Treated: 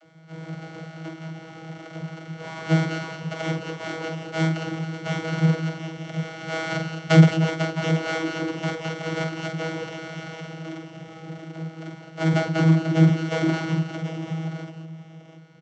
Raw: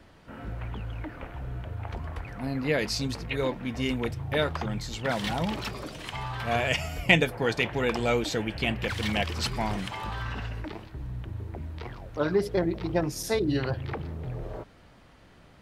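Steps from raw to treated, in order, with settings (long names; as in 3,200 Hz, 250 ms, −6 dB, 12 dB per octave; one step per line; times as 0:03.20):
samples sorted by size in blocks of 64 samples
multi-tap delay 47/180/208/217/734 ms −5/−14.5/−17/−10/−11 dB
channel vocoder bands 32, saw 161 Hz
level +5 dB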